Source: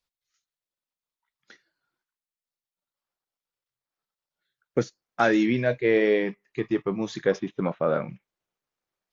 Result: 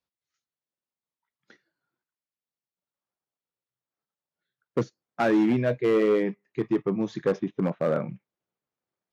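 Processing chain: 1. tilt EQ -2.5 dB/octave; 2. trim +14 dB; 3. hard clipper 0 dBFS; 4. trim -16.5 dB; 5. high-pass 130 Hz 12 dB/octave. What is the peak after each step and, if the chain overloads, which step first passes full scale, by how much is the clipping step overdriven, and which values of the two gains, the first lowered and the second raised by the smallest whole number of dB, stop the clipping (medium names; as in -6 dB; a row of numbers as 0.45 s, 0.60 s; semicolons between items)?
-5.5 dBFS, +8.5 dBFS, 0.0 dBFS, -16.5 dBFS, -12.0 dBFS; step 2, 8.5 dB; step 2 +5 dB, step 4 -7.5 dB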